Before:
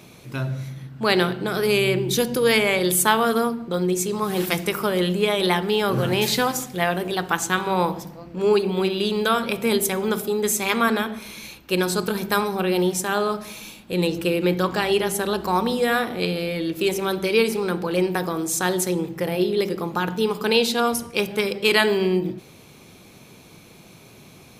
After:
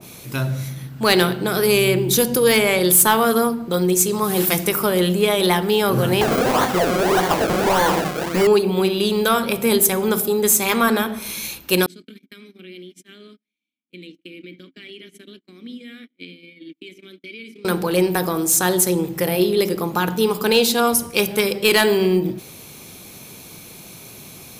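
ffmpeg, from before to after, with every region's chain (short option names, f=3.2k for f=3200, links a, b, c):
-filter_complex "[0:a]asettb=1/sr,asplit=3[a][b][c];[a]atrim=end=6.214[d];[b]atrim=start=6.21:end=8.47,asetpts=PTS-STARTPTS,afade=t=in:d=0.004:c=qsin,afade=t=out:st=2.256:d=0.004:c=qsin,acompressor=threshold=-25dB:ratio=6:attack=3.2:release=140:knee=1:detection=peak,acrusher=samples=33:mix=1:aa=0.000001:lfo=1:lforange=33:lforate=1.7,asplit=2[e][f];[f]highpass=f=720:p=1,volume=26dB,asoftclip=type=tanh:threshold=-9.5dB[g];[e][g]amix=inputs=2:normalize=0,lowpass=f=3k:p=1,volume=-6dB[h];[c]atrim=start=8.466[i];[d][h]acrossfade=d=0.004:c1=hsin:c2=qsin[j];[j][i]acrossfade=d=0.004:c1=qsin:c2=hsin,asettb=1/sr,asplit=3[k][l][m];[k]atrim=end=11.864[n];[l]atrim=start=11.86:end=17.65,asetpts=PTS-STARTPTS,afade=t=in:d=0.004:c=qsin,afade=t=out:st=5.786:d=0.004:c=qsin,agate=range=-41dB:threshold=-25dB:ratio=16:release=100:detection=peak,acompressor=threshold=-26dB:ratio=4:attack=3.2:release=140:knee=1:detection=peak,asplit=3[o][p][q];[o]bandpass=f=270:t=q:w=8,volume=0dB[r];[p]bandpass=f=2.29k:t=q:w=8,volume=-6dB[s];[q]bandpass=f=3.01k:t=q:w=8,volume=-9dB[t];[r][s][t]amix=inputs=3:normalize=0[u];[m]atrim=start=17.646[v];[n][u]acrossfade=d=0.004:c1=hsin:c2=qsin[w];[w][v]acrossfade=d=0.004:c1=qsin:c2=hsin,aemphasis=mode=production:type=50kf,acontrast=49,adynamicequalizer=threshold=0.0316:dfrequency=1500:dqfactor=0.7:tfrequency=1500:tqfactor=0.7:attack=5:release=100:ratio=0.375:range=2:mode=cutabove:tftype=highshelf,volume=-2dB"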